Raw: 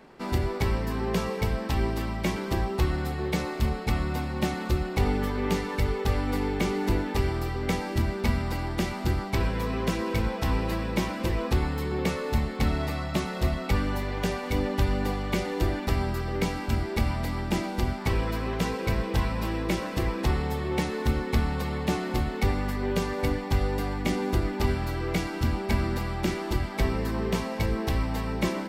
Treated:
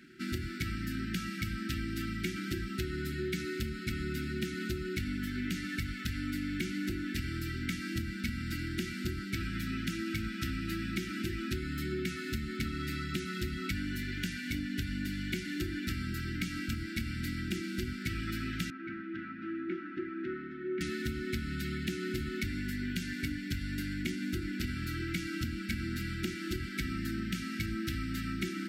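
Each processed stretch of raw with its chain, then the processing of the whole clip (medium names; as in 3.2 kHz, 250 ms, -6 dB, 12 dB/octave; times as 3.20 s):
18.70–20.81 s: Butterworth band-pass 670 Hz, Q 0.6 + distance through air 85 m
whole clip: high-pass 140 Hz 6 dB/octave; FFT band-reject 380–1300 Hz; compression 10:1, threshold -31 dBFS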